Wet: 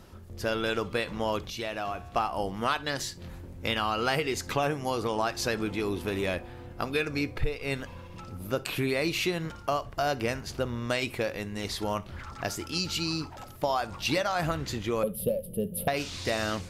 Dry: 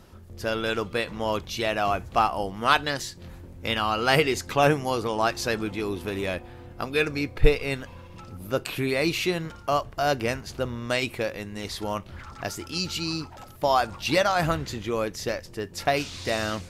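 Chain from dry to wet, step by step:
0:15.03–0:15.88: drawn EQ curve 110 Hz 0 dB, 200 Hz +13 dB, 320 Hz −9 dB, 540 Hz +11 dB, 850 Hz −18 dB, 1,900 Hz −26 dB, 3,100 Hz −4 dB, 6,500 Hz −30 dB, 10,000 Hz +13 dB
downward compressor 6 to 1, threshold −24 dBFS, peak gain reduction 14 dB
0:01.50–0:02.16: tuned comb filter 79 Hz, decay 1.6 s, harmonics all, mix 50%
convolution reverb RT60 0.20 s, pre-delay 47 ms, DRR 20 dB

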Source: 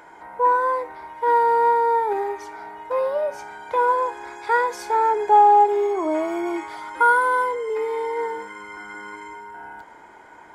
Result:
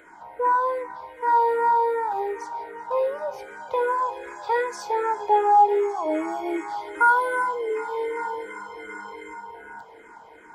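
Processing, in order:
echo machine with several playback heads 388 ms, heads all three, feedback 42%, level −21.5 dB
frequency shifter mixed with the dry sound −2.6 Hz

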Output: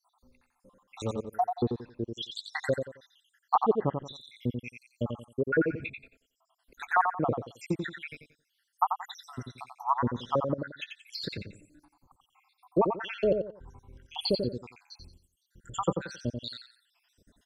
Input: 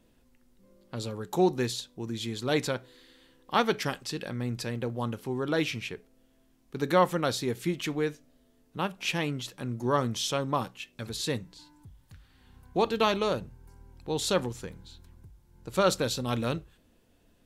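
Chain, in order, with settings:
time-frequency cells dropped at random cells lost 84%
treble cut that deepens with the level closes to 670 Hz, closed at −30 dBFS
parametric band 1,100 Hz +8 dB 1.6 octaves, from 0:14.15 4,800 Hz
repeating echo 89 ms, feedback 27%, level −6 dB
level +3.5 dB

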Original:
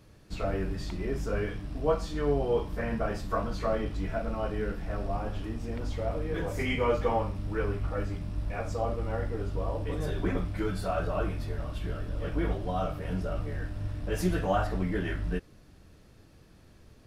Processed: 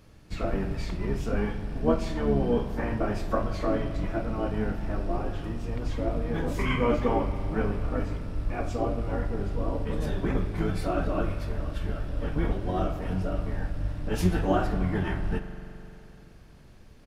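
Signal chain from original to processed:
pitch-shifted copies added −12 semitones −1 dB
spring reverb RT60 3.2 s, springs 43 ms, chirp 25 ms, DRR 9.5 dB

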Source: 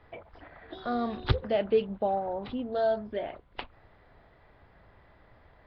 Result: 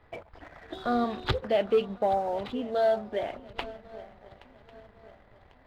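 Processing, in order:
feedback echo with a long and a short gap by turns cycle 1,097 ms, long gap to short 3 to 1, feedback 43%, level −20 dB
leveller curve on the samples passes 1
0:01.04–0:03.30: low-shelf EQ 240 Hz −7.5 dB

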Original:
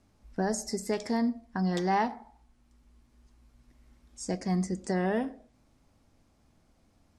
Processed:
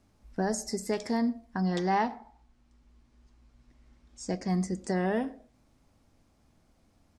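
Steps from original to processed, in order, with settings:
0:01.61–0:04.48: low-pass filter 7,200 Hz 12 dB per octave
far-end echo of a speakerphone 120 ms, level −29 dB

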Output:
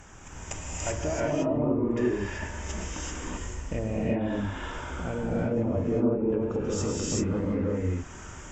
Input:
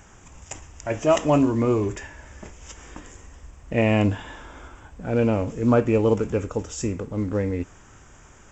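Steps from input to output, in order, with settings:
treble cut that deepens with the level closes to 730 Hz, closed at −16.5 dBFS
downward compressor 4 to 1, threshold −32 dBFS, peak gain reduction 14.5 dB
reverb whose tail is shaped and stops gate 410 ms rising, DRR −6 dB

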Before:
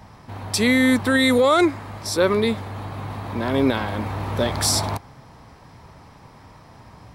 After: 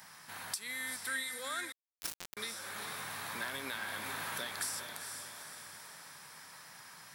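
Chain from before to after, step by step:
first difference
downward compressor 12 to 1, threshold −45 dBFS, peak gain reduction 26.5 dB
graphic EQ with 15 bands 160 Hz +11 dB, 1,600 Hz +9 dB, 10,000 Hz +4 dB
on a send: feedback delay with all-pass diffusion 453 ms, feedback 53%, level −6 dB
0:01.72–0:02.37: on the sum: bit-depth reduction 6 bits, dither none
0:02.95–0:04.02: noise that follows the level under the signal 25 dB
level +5 dB

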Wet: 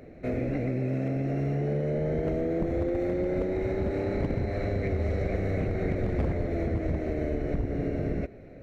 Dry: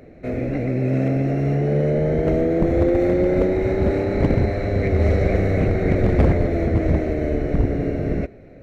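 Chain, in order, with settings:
downward compressor, threshold −22 dBFS, peak gain reduction 9.5 dB
level −3 dB

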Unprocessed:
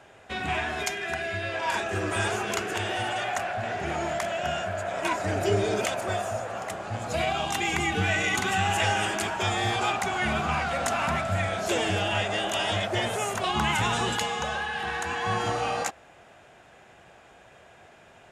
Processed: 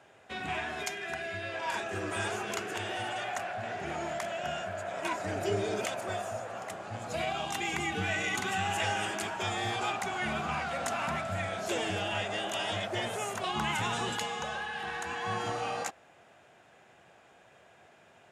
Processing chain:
high-pass filter 98 Hz
level −6 dB

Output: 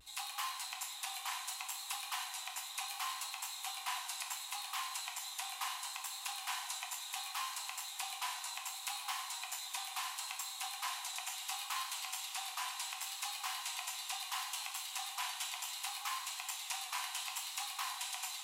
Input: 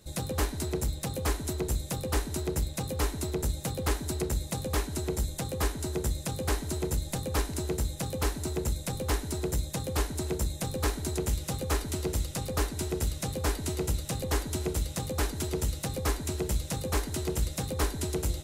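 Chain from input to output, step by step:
brickwall limiter −23 dBFS, peak gain reduction 8.5 dB
Chebyshev high-pass with heavy ripple 730 Hz, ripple 9 dB
pitch vibrato 0.7 Hz 41 cents
on a send: feedback delay with all-pass diffusion 709 ms, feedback 44%, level −13 dB
on the sum: reverb whose tail is shaped and stops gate 240 ms falling, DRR 2 dB
level +3.5 dB

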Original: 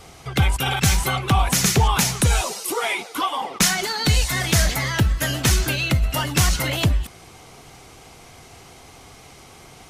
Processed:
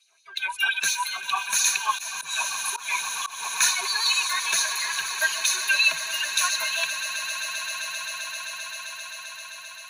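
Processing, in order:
spectral dynamics exaggerated over time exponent 1.5
auto-filter high-pass sine 5.7 Hz 950–4,500 Hz
EQ curve with evenly spaced ripples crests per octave 1.5, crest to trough 15 dB
echo that builds up and dies away 131 ms, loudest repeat 8, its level −16.5 dB
0:01.93–0:03.45: volume swells 187 ms
harmonic and percussive parts rebalanced harmonic +6 dB
level −6 dB

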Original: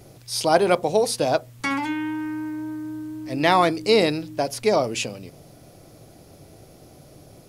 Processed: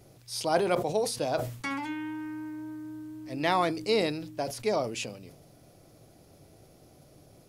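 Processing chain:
level that may fall only so fast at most 87 dB per second
level −8.5 dB

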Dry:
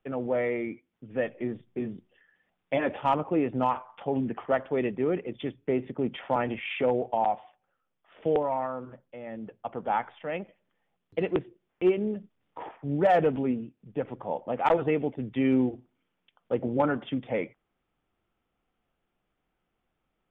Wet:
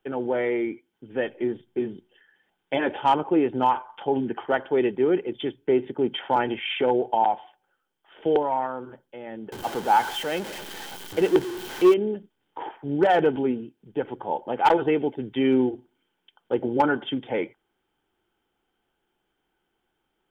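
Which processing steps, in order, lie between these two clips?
0:09.52–0:11.94: converter with a step at zero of −34 dBFS
high-shelf EQ 2,200 Hz +9 dB
hollow resonant body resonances 370/850/1,500/3,100 Hz, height 11 dB, ringing for 20 ms
hard clipping −8 dBFS, distortion −20 dB
level −3 dB

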